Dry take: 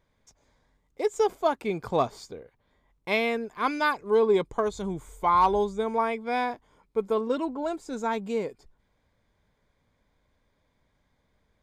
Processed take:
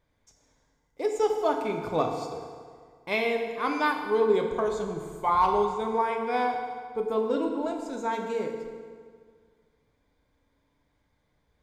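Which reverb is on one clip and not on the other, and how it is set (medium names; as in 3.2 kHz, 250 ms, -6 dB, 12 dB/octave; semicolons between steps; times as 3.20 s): FDN reverb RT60 1.9 s, low-frequency decay 1×, high-frequency decay 0.75×, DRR 2 dB; trim -3 dB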